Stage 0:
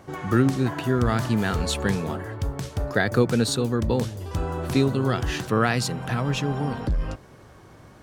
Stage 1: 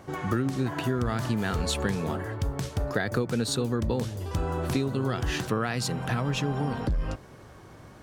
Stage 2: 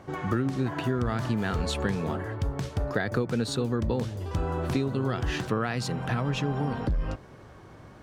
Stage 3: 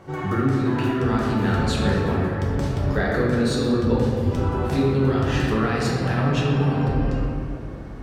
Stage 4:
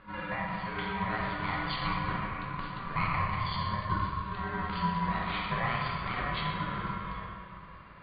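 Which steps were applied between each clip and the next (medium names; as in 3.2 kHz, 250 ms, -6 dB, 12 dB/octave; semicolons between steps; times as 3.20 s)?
compression, threshold -23 dBFS, peak gain reduction 9.5 dB
treble shelf 6.3 kHz -10 dB
reverberation RT60 2.4 s, pre-delay 5 ms, DRR -5 dB
FFT band-pass 370–4200 Hz; ring modulator 580 Hz; trim -2.5 dB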